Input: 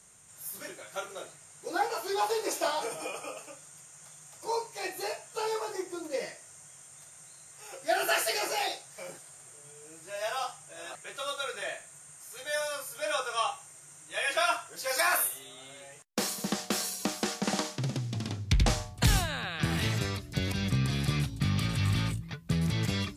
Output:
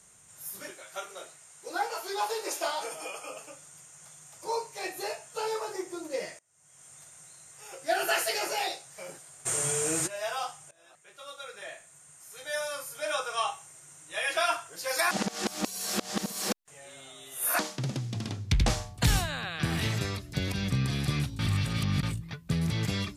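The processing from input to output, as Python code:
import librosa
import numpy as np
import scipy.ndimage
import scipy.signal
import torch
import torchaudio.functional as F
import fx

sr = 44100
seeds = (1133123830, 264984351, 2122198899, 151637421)

y = fx.low_shelf(x, sr, hz=350.0, db=-9.5, at=(0.7, 3.3))
y = fx.env_flatten(y, sr, amount_pct=70, at=(9.45, 10.06), fade=0.02)
y = fx.edit(y, sr, fx.fade_in_from(start_s=6.39, length_s=0.49, curve='qua', floor_db=-24.0),
    fx.fade_in_from(start_s=10.71, length_s=2.1, floor_db=-20.5),
    fx.reverse_span(start_s=15.11, length_s=2.48),
    fx.reverse_span(start_s=21.39, length_s=0.64), tone=tone)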